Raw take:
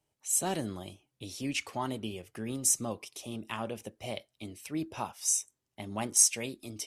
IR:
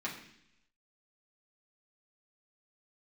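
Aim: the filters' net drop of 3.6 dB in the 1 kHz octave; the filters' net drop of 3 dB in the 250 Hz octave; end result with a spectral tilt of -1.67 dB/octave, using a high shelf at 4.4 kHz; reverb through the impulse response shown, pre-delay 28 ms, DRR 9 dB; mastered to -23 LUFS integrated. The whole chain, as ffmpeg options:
-filter_complex "[0:a]equalizer=f=250:t=o:g=-3.5,equalizer=f=1000:t=o:g=-5,highshelf=f=4400:g=8.5,asplit=2[s0][s1];[1:a]atrim=start_sample=2205,adelay=28[s2];[s1][s2]afir=irnorm=-1:irlink=0,volume=0.237[s3];[s0][s3]amix=inputs=2:normalize=0,volume=0.891"

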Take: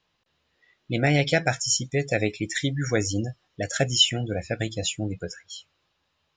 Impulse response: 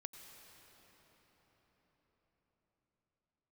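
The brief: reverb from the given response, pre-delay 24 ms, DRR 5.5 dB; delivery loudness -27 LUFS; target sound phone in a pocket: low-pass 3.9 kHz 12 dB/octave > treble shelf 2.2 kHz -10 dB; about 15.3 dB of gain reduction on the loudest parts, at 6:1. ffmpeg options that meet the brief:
-filter_complex "[0:a]acompressor=threshold=0.0282:ratio=6,asplit=2[s0][s1];[1:a]atrim=start_sample=2205,adelay=24[s2];[s1][s2]afir=irnorm=-1:irlink=0,volume=0.891[s3];[s0][s3]amix=inputs=2:normalize=0,lowpass=3900,highshelf=f=2200:g=-10,volume=3.16"

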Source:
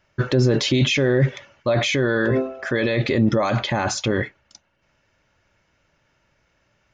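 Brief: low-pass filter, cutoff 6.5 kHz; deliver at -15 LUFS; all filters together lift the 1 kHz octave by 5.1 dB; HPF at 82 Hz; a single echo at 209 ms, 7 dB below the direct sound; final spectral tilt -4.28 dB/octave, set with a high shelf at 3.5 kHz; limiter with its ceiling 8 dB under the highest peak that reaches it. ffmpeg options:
-af "highpass=82,lowpass=6500,equalizer=f=1000:t=o:g=7.5,highshelf=f=3500:g=-5.5,alimiter=limit=0.178:level=0:latency=1,aecho=1:1:209:0.447,volume=2.82"

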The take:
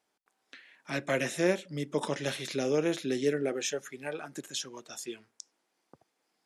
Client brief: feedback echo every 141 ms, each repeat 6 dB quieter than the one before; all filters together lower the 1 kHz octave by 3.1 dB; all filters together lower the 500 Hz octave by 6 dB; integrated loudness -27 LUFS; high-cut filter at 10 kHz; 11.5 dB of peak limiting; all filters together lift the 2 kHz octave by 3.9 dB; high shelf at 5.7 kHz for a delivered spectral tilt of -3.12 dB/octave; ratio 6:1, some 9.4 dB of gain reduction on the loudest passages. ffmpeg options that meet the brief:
-af "lowpass=10000,equalizer=f=500:t=o:g=-7,equalizer=f=1000:t=o:g=-3.5,equalizer=f=2000:t=o:g=5.5,highshelf=f=5700:g=6,acompressor=threshold=0.0178:ratio=6,alimiter=level_in=1.88:limit=0.0631:level=0:latency=1,volume=0.531,aecho=1:1:141|282|423|564|705|846:0.501|0.251|0.125|0.0626|0.0313|0.0157,volume=4.47"

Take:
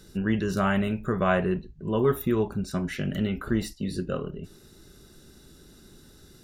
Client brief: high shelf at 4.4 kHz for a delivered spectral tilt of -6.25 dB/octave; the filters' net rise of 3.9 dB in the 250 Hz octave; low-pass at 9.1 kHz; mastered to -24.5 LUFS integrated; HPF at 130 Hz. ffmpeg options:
-af "highpass=130,lowpass=9100,equalizer=f=250:t=o:g=6,highshelf=f=4400:g=5.5,volume=1.06"

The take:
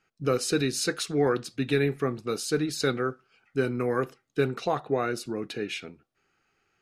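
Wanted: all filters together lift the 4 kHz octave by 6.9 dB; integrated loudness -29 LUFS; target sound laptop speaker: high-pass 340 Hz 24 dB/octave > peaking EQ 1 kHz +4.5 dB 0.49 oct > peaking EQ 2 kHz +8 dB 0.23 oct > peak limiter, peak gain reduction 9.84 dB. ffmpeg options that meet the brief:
-af "highpass=f=340:w=0.5412,highpass=f=340:w=1.3066,equalizer=f=1000:t=o:w=0.49:g=4.5,equalizer=f=2000:t=o:w=0.23:g=8,equalizer=f=4000:t=o:g=8,volume=1.41,alimiter=limit=0.112:level=0:latency=1"

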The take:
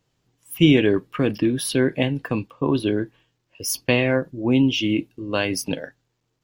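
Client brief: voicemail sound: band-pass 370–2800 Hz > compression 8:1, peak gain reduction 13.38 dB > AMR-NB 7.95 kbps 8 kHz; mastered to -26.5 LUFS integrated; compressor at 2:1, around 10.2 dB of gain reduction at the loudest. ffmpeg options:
-af "acompressor=threshold=0.0355:ratio=2,highpass=370,lowpass=2800,acompressor=threshold=0.0126:ratio=8,volume=7.5" -ar 8000 -c:a libopencore_amrnb -b:a 7950

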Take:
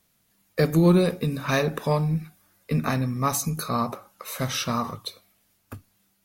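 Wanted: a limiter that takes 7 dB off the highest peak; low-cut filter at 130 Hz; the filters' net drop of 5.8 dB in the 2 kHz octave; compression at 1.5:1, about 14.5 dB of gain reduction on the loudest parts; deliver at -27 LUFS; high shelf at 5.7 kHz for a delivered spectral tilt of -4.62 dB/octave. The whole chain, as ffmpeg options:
-af "highpass=130,equalizer=f=2000:t=o:g=-8.5,highshelf=f=5700:g=6,acompressor=threshold=0.00141:ratio=1.5,volume=4.47,alimiter=limit=0.168:level=0:latency=1"

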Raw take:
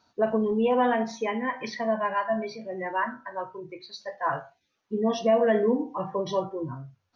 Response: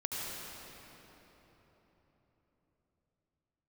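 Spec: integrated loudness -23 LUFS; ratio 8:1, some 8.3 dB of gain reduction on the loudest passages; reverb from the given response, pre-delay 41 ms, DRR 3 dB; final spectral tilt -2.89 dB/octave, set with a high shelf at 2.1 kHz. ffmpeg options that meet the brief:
-filter_complex "[0:a]highshelf=f=2100:g=-9,acompressor=threshold=0.0447:ratio=8,asplit=2[s0][s1];[1:a]atrim=start_sample=2205,adelay=41[s2];[s1][s2]afir=irnorm=-1:irlink=0,volume=0.447[s3];[s0][s3]amix=inputs=2:normalize=0,volume=2.66"

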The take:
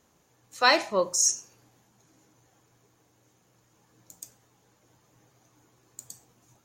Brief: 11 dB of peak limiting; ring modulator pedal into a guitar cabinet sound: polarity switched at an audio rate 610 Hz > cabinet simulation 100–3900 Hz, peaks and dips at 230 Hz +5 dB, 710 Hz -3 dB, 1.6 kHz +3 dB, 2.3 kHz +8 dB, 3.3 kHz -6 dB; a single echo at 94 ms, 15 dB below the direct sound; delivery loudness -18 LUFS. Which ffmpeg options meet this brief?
-af "alimiter=limit=0.119:level=0:latency=1,aecho=1:1:94:0.178,aeval=exprs='val(0)*sgn(sin(2*PI*610*n/s))':c=same,highpass=100,equalizer=f=230:t=q:w=4:g=5,equalizer=f=710:t=q:w=4:g=-3,equalizer=f=1600:t=q:w=4:g=3,equalizer=f=2300:t=q:w=4:g=8,equalizer=f=3300:t=q:w=4:g=-6,lowpass=f=3900:w=0.5412,lowpass=f=3900:w=1.3066,volume=3.76"

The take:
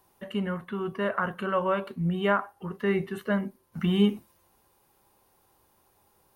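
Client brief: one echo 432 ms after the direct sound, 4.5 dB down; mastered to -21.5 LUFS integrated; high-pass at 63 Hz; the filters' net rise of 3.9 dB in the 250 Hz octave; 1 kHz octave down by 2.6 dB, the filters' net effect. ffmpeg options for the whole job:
-af "highpass=63,equalizer=f=250:t=o:g=6,equalizer=f=1000:t=o:g=-3.5,aecho=1:1:432:0.596,volume=1.58"

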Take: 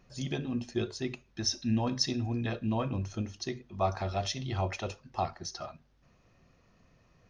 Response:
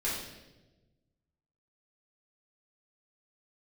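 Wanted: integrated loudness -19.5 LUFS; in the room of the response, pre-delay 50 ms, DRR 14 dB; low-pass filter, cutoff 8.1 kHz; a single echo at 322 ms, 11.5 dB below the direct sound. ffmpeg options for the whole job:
-filter_complex "[0:a]lowpass=8100,aecho=1:1:322:0.266,asplit=2[s0][s1];[1:a]atrim=start_sample=2205,adelay=50[s2];[s1][s2]afir=irnorm=-1:irlink=0,volume=0.0944[s3];[s0][s3]amix=inputs=2:normalize=0,volume=4.73"

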